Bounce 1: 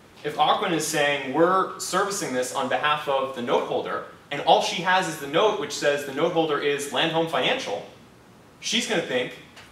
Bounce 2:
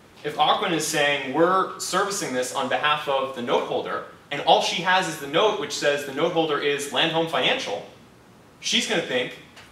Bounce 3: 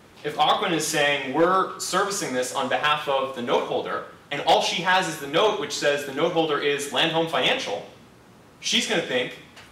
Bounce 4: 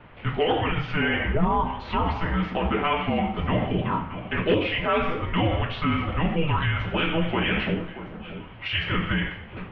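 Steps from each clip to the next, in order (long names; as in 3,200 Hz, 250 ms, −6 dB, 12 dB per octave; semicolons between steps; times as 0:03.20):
dynamic equaliser 3,400 Hz, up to +3 dB, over −36 dBFS, Q 0.8
gain into a clipping stage and back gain 11.5 dB
brickwall limiter −18.5 dBFS, peak gain reduction 7 dB; single-sideband voice off tune −320 Hz 210–3,200 Hz; delay that swaps between a low-pass and a high-pass 630 ms, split 1,100 Hz, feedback 57%, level −12 dB; level +4 dB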